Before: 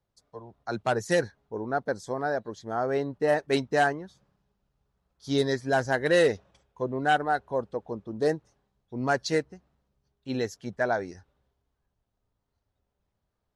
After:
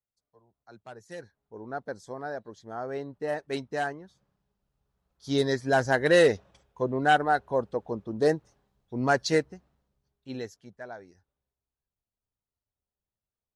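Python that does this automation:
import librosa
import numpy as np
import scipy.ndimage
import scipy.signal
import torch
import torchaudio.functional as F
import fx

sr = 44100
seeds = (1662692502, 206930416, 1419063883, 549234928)

y = fx.gain(x, sr, db=fx.line((1.07, -19.0), (1.69, -7.0), (3.91, -7.0), (5.88, 2.0), (9.5, 2.0), (10.46, -7.5), (10.78, -15.0)))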